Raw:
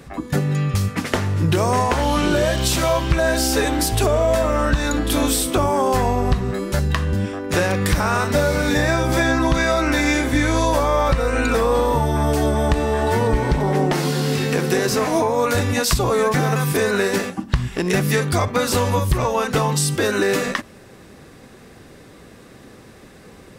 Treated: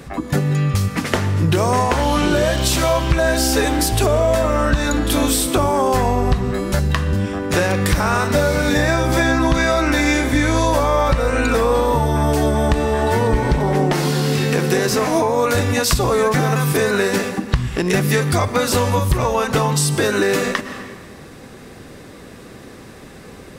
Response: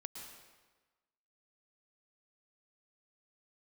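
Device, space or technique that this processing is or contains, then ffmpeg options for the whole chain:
ducked reverb: -filter_complex "[0:a]asplit=3[link_01][link_02][link_03];[1:a]atrim=start_sample=2205[link_04];[link_02][link_04]afir=irnorm=-1:irlink=0[link_05];[link_03]apad=whole_len=1040170[link_06];[link_05][link_06]sidechaincompress=threshold=-27dB:ratio=8:attack=26:release=257,volume=2.5dB[link_07];[link_01][link_07]amix=inputs=2:normalize=0"

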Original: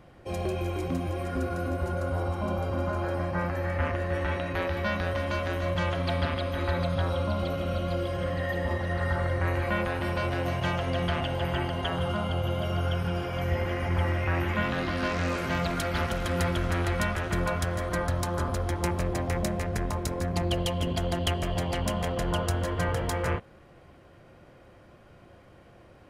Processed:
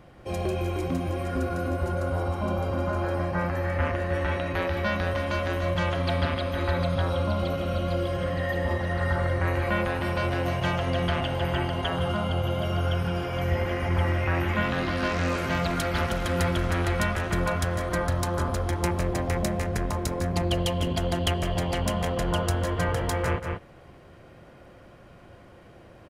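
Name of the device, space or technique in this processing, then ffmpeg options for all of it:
ducked delay: -filter_complex "[0:a]asplit=3[link_01][link_02][link_03];[link_02]adelay=184,volume=-4dB[link_04];[link_03]apad=whole_len=1158683[link_05];[link_04][link_05]sidechaincompress=threshold=-41dB:ratio=8:attack=7.4:release=111[link_06];[link_01][link_06]amix=inputs=2:normalize=0,volume=2dB"

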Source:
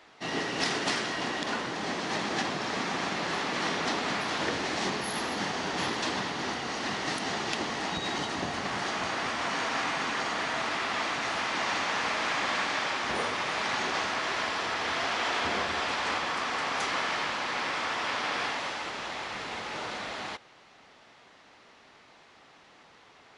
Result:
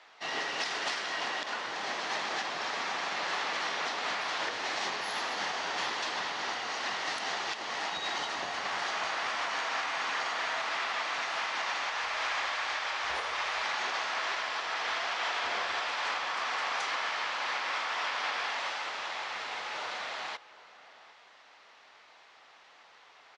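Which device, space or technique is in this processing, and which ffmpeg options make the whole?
DJ mixer with the lows and highs turned down: -filter_complex "[0:a]acrossover=split=520 7900:gain=0.141 1 0.126[link_01][link_02][link_03];[link_01][link_02][link_03]amix=inputs=3:normalize=0,asplit=2[link_04][link_05];[link_05]adelay=758,volume=-18dB,highshelf=frequency=4000:gain=-17.1[link_06];[link_04][link_06]amix=inputs=2:normalize=0,alimiter=limit=-22.5dB:level=0:latency=1:release=213,asplit=3[link_07][link_08][link_09];[link_07]afade=type=out:start_time=11.88:duration=0.02[link_10];[link_08]asubboost=boost=11:cutoff=53,afade=type=in:start_time=11.88:duration=0.02,afade=type=out:start_time=13.62:duration=0.02[link_11];[link_09]afade=type=in:start_time=13.62:duration=0.02[link_12];[link_10][link_11][link_12]amix=inputs=3:normalize=0"

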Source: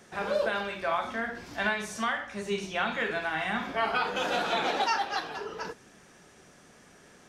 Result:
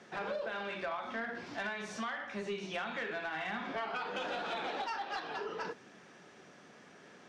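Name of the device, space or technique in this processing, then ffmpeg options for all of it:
AM radio: -af "highpass=160,lowpass=4500,acompressor=threshold=-33dB:ratio=10,asoftclip=type=tanh:threshold=-29dB"

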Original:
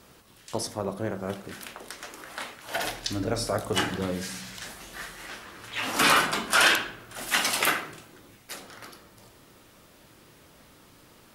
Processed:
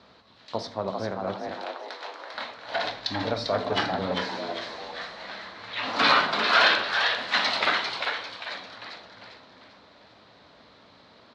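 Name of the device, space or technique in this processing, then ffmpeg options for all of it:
frequency-shifting delay pedal into a guitar cabinet: -filter_complex "[0:a]asplit=6[link_01][link_02][link_03][link_04][link_05][link_06];[link_02]adelay=397,afreqshift=150,volume=-5dB[link_07];[link_03]adelay=794,afreqshift=300,volume=-12.7dB[link_08];[link_04]adelay=1191,afreqshift=450,volume=-20.5dB[link_09];[link_05]adelay=1588,afreqshift=600,volume=-28.2dB[link_10];[link_06]adelay=1985,afreqshift=750,volume=-36dB[link_11];[link_01][link_07][link_08][link_09][link_10][link_11]amix=inputs=6:normalize=0,highpass=89,equalizer=frequency=140:width_type=q:width=4:gain=-8,equalizer=frequency=350:width_type=q:width=4:gain=-6,equalizer=frequency=650:width_type=q:width=4:gain=4,equalizer=frequency=1000:width_type=q:width=4:gain=3,equalizer=frequency=2800:width_type=q:width=4:gain=-4,equalizer=frequency=4100:width_type=q:width=4:gain=9,lowpass=frequency=4300:width=0.5412,lowpass=frequency=4300:width=1.3066,asettb=1/sr,asplit=3[link_12][link_13][link_14];[link_12]atrim=end=1.654[link_15];[link_13]atrim=start=1.65:end=2.34,asetpts=PTS-STARTPTS,afade=type=in:duration=0.004:curve=qsin,afade=type=out:start_time=0.686:duration=0.004:curve=qsin,highpass=frequency=310:width=0.5412,highpass=frequency=310:width=1.3066[link_16];[link_14]atrim=start=2.336[link_17];[link_15][link_16]acrossfade=duration=0.004:curve1=hsin:curve2=qsin[link_18];[link_18][link_17]acrossfade=duration=0.004:curve1=qsin:curve2=hsin"

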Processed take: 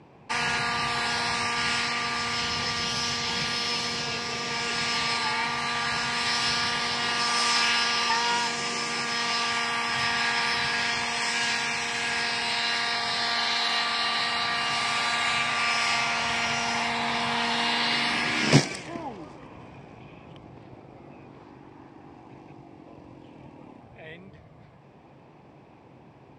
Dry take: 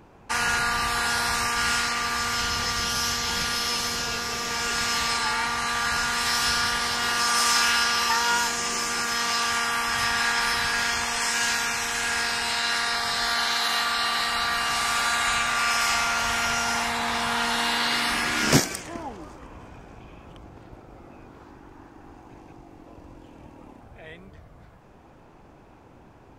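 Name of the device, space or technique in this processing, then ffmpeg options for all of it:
car door speaker: -filter_complex "[0:a]asettb=1/sr,asplit=3[link_01][link_02][link_03];[link_01]atrim=end=1.084[link_04];[link_02]atrim=start=1.08:end=1.71,asetpts=PTS-STARTPTS,afade=type=in:duration=0.004:curve=qsin,afade=type=out:start_time=0.626:duration=0.004:curve=qsin,lowpass=12000[link_05];[link_03]atrim=start=1.706[link_06];[link_04][link_05]acrossfade=duration=0.004:curve1=hsin:curve2=qsin[link_07];[link_07][link_06]acrossfade=duration=0.004:curve1=qsin:curve2=hsin,highpass=110,equalizer=frequency=140:width_type=q:width=4:gain=6,equalizer=frequency=1400:width_type=q:width=4:gain=-9,equalizer=frequency=2300:width_type=q:width=4:gain=3,equalizer=frequency=6600:width_type=q:width=4:gain=-9,lowpass=frequency=7600:width=0.5412,lowpass=frequency=7600:width=1.3066"

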